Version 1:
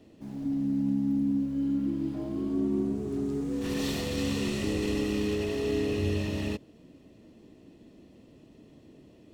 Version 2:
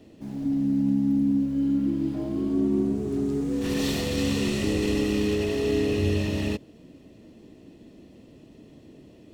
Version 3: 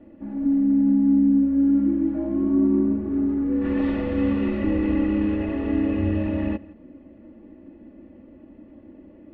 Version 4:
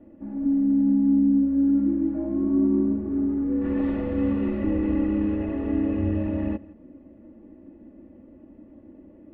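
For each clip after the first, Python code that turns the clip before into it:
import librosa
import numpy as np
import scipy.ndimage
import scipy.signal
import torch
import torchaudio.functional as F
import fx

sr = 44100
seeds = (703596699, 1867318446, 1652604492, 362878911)

y1 = fx.peak_eq(x, sr, hz=1100.0, db=-2.0, octaves=0.77)
y1 = y1 * 10.0 ** (4.5 / 20.0)
y2 = scipy.signal.sosfilt(scipy.signal.butter(4, 2000.0, 'lowpass', fs=sr, output='sos'), y1)
y2 = y2 + 0.9 * np.pad(y2, (int(3.5 * sr / 1000.0), 0))[:len(y2)]
y2 = y2 + 10.0 ** (-22.0 / 20.0) * np.pad(y2, (int(167 * sr / 1000.0), 0))[:len(y2)]
y3 = fx.high_shelf(y2, sr, hz=2100.0, db=-10.5)
y3 = y3 * 10.0 ** (-1.5 / 20.0)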